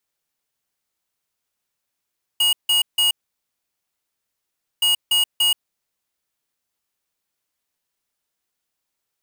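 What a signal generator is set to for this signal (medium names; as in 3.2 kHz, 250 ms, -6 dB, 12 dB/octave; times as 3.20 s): beep pattern square 2.88 kHz, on 0.13 s, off 0.16 s, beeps 3, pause 1.71 s, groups 2, -17 dBFS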